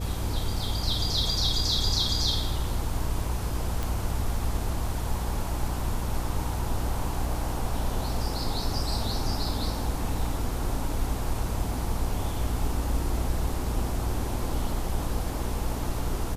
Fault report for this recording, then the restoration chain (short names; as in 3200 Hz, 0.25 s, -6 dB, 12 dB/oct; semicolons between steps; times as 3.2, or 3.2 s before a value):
hum 60 Hz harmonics 8 -32 dBFS
3.83 pop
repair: de-click; de-hum 60 Hz, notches 8